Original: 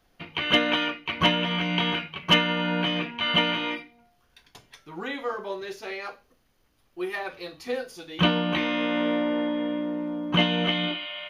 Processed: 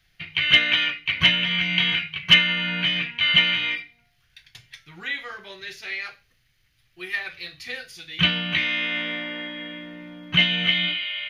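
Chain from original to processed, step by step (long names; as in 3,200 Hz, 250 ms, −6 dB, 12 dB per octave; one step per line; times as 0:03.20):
octave-band graphic EQ 125/250/500/1,000/2,000/4,000 Hz +9/−12/−9/−11/+10/+5 dB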